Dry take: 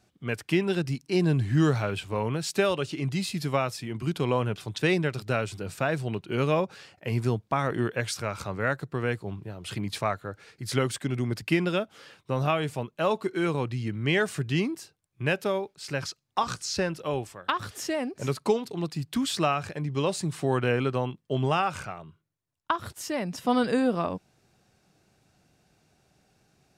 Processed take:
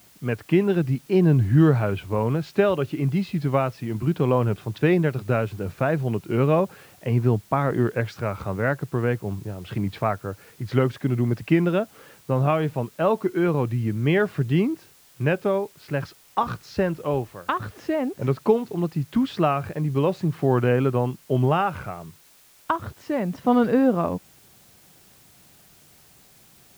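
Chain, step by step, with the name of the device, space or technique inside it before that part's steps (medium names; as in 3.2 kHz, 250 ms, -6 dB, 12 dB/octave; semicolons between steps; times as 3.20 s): cassette deck with a dirty head (tape spacing loss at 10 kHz 38 dB; wow and flutter; white noise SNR 31 dB); trim +7 dB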